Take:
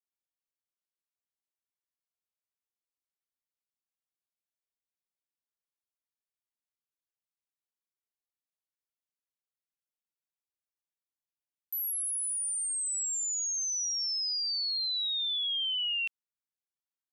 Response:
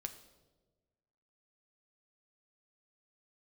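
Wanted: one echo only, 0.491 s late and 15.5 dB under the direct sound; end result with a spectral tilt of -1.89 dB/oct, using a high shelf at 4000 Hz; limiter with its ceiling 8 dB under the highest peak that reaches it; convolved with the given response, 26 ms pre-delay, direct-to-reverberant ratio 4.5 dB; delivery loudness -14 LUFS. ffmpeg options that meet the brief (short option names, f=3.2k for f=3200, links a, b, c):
-filter_complex "[0:a]highshelf=f=4k:g=-8,alimiter=level_in=14.5dB:limit=-24dB:level=0:latency=1,volume=-14.5dB,aecho=1:1:491:0.168,asplit=2[a][b];[1:a]atrim=start_sample=2205,adelay=26[c];[b][c]afir=irnorm=-1:irlink=0,volume=-2dB[d];[a][d]amix=inputs=2:normalize=0,volume=23dB"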